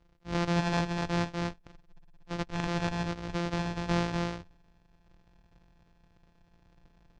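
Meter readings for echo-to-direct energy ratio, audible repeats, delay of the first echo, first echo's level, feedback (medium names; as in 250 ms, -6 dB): -3.5 dB, 1, 245 ms, -3.5 dB, no regular repeats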